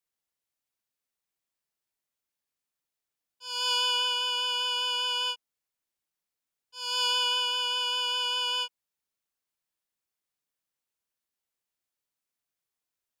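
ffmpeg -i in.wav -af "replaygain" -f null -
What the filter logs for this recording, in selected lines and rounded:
track_gain = +7.2 dB
track_peak = 0.128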